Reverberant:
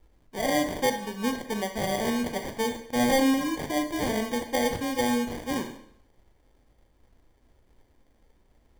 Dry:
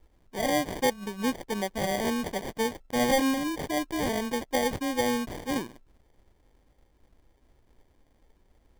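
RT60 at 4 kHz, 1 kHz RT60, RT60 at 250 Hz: 0.65 s, 0.65 s, 0.75 s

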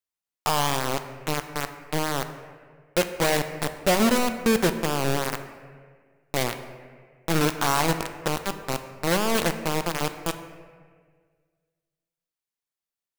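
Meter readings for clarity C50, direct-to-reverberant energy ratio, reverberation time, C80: 10.0 dB, 8.0 dB, 1.7 s, 11.0 dB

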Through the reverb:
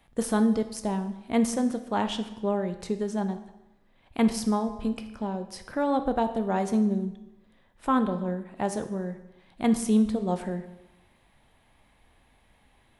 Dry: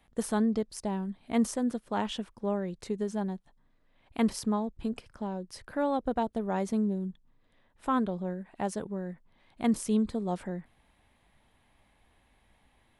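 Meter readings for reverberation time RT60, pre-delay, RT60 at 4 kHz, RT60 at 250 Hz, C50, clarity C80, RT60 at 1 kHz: 0.95 s, 13 ms, 0.90 s, 0.95 s, 11.0 dB, 13.5 dB, 0.95 s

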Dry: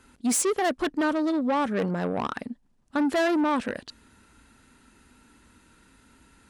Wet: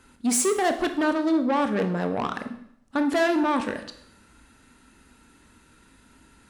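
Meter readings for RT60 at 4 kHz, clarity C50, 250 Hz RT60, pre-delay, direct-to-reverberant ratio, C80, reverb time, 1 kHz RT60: 0.65 s, 10.5 dB, 0.75 s, 17 ms, 7.0 dB, 13.5 dB, 0.70 s, 0.70 s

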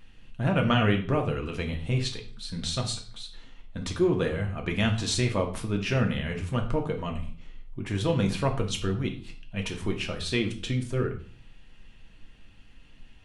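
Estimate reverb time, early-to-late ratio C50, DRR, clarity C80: 0.45 s, 10.0 dB, 2.0 dB, 14.5 dB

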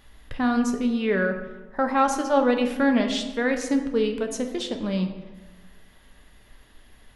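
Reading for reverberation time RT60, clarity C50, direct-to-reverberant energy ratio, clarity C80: 1.2 s, 8.5 dB, 4.5 dB, 10.0 dB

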